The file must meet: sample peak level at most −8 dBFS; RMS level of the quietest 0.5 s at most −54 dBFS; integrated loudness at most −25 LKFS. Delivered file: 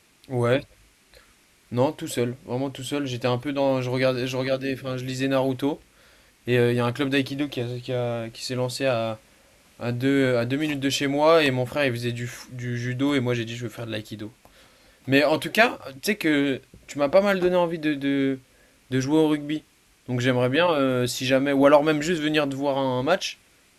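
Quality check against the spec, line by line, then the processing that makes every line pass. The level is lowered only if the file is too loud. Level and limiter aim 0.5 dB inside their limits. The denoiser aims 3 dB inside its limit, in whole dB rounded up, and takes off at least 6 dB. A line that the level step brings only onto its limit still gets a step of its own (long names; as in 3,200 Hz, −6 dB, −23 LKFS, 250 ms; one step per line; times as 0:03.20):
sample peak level −4.5 dBFS: out of spec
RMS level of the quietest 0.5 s −58 dBFS: in spec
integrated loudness −24.0 LKFS: out of spec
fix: level −1.5 dB
brickwall limiter −8.5 dBFS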